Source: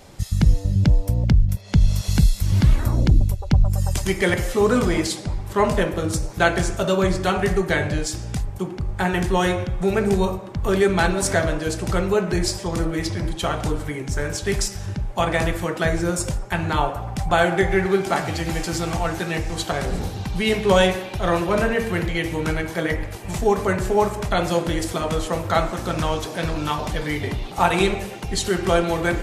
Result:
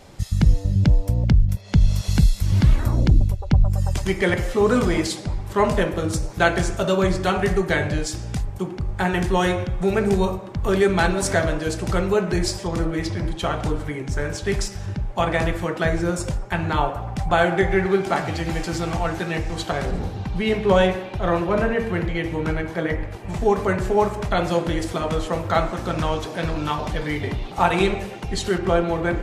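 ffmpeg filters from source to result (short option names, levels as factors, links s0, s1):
-af "asetnsamples=n=441:p=0,asendcmd='3.28 lowpass f 3800;4.67 lowpass f 8400;12.67 lowpass f 4200;19.91 lowpass f 2000;23.41 lowpass f 4100;28.58 lowpass f 1600',lowpass=f=7100:p=1"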